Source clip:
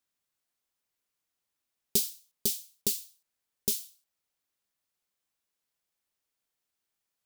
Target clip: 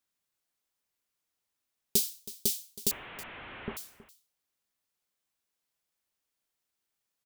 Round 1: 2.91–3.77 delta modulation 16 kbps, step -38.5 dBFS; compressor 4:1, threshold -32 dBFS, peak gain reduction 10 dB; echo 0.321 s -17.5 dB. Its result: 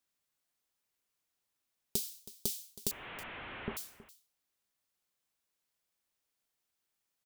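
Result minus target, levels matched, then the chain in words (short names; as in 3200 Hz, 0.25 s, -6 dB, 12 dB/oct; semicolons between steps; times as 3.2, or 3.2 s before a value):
compressor: peak gain reduction +10 dB
2.91–3.77 delta modulation 16 kbps, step -38.5 dBFS; echo 0.321 s -17.5 dB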